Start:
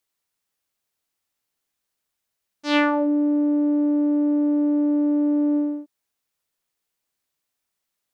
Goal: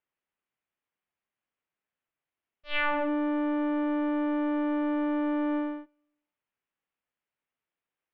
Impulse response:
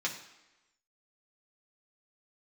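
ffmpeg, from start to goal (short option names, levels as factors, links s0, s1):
-filter_complex "[0:a]aeval=exprs='abs(val(0))':c=same,asplit=2[s0][s1];[1:a]atrim=start_sample=2205,adelay=9[s2];[s1][s2]afir=irnorm=-1:irlink=0,volume=0.0501[s3];[s0][s3]amix=inputs=2:normalize=0,highpass=f=370:t=q:w=0.5412,highpass=f=370:t=q:w=1.307,lowpass=f=3200:t=q:w=0.5176,lowpass=f=3200:t=q:w=0.7071,lowpass=f=3200:t=q:w=1.932,afreqshift=-290"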